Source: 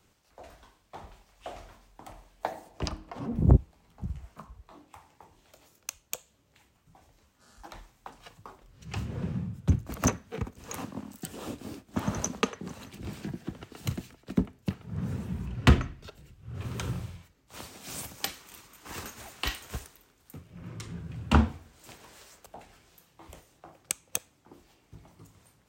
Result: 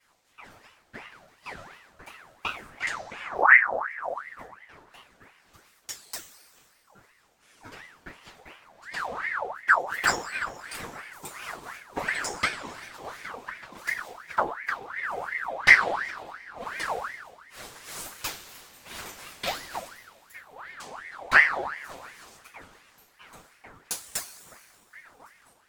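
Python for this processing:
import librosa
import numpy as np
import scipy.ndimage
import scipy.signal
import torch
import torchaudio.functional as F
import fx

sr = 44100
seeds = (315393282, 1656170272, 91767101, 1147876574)

y = fx.env_flanger(x, sr, rest_ms=8.5, full_db=-24.0)
y = fx.rev_double_slope(y, sr, seeds[0], early_s=0.23, late_s=1.9, knee_db=-18, drr_db=-7.5)
y = fx.ring_lfo(y, sr, carrier_hz=1300.0, swing_pct=55, hz=2.8)
y = y * 10.0 ** (-1.0 / 20.0)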